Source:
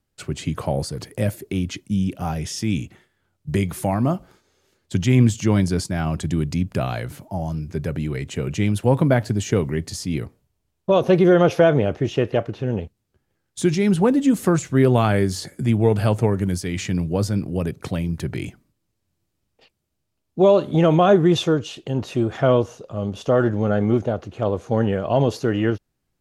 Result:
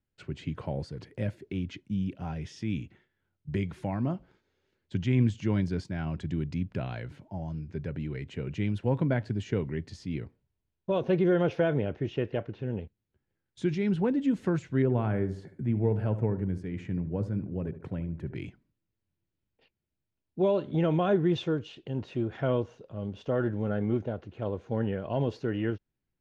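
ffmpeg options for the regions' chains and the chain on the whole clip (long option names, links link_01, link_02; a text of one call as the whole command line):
ffmpeg -i in.wav -filter_complex "[0:a]asettb=1/sr,asplit=3[link_01][link_02][link_03];[link_01]atrim=end=14.824[link_04];[link_02]atrim=start=14.82:end=18.36,asetpts=PTS-STARTPTS,afade=type=in:duration=0.004:curve=qsin,afade=type=out:start_time=3.536:duration=0.004:curve=qsin,equalizer=frequency=4400:width=0.68:gain=-15,asplit=2[link_05][link_06];[link_06]adelay=73,lowpass=frequency=2000:poles=1,volume=-12.5dB,asplit=2[link_07][link_08];[link_08]adelay=73,lowpass=frequency=2000:poles=1,volume=0.42,asplit=2[link_09][link_10];[link_10]adelay=73,lowpass=frequency=2000:poles=1,volume=0.42,asplit=2[link_11][link_12];[link_12]adelay=73,lowpass=frequency=2000:poles=1,volume=0.42[link_13];[link_05][link_07][link_09][link_11][link_13]amix=inputs=5:normalize=0,atrim=end_sample=156114[link_14];[link_03]atrim=start=18.356[link_15];[link_04][link_14]acrossfade=duration=0.004:curve1=hsin:curve2=qsin[link_16];[link_16][link_15]acrossfade=duration=0.004:curve1=qsin:curve2=hsin,lowpass=3200,equalizer=frequency=710:width_type=o:width=0.8:gain=-4.5,bandreject=frequency=1200:width=7.6,volume=-9dB" out.wav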